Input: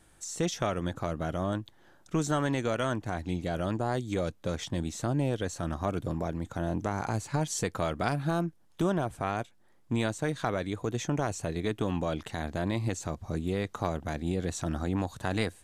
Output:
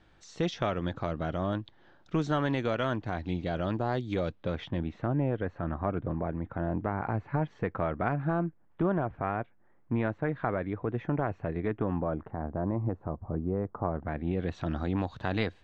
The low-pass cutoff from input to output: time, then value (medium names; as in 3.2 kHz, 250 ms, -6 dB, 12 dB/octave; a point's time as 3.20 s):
low-pass 24 dB/octave
4.19 s 4.4 kHz
5.19 s 2.1 kHz
11.72 s 2.1 kHz
12.33 s 1.2 kHz
13.82 s 1.2 kHz
14.13 s 2.2 kHz
14.75 s 4.1 kHz